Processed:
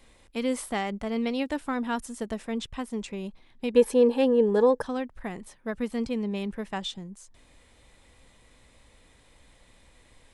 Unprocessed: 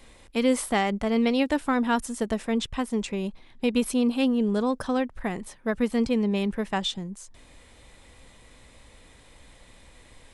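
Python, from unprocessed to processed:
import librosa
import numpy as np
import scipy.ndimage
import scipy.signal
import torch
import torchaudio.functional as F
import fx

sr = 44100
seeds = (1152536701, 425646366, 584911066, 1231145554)

y = fx.small_body(x, sr, hz=(480.0, 870.0, 1700.0), ring_ms=30, db=17, at=(3.74, 4.82))
y = y * librosa.db_to_amplitude(-5.5)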